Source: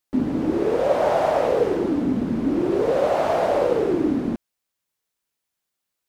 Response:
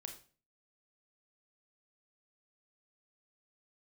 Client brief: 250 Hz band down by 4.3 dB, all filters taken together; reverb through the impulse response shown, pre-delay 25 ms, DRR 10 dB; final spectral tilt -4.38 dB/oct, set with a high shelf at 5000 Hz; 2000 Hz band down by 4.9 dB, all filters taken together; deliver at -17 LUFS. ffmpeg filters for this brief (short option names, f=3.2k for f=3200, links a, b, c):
-filter_complex "[0:a]equalizer=f=250:t=o:g=-5.5,equalizer=f=2k:t=o:g=-5.5,highshelf=f=5k:g=-7,asplit=2[a][b];[1:a]atrim=start_sample=2205,adelay=25[c];[b][c]afir=irnorm=-1:irlink=0,volume=-6dB[d];[a][d]amix=inputs=2:normalize=0,volume=6dB"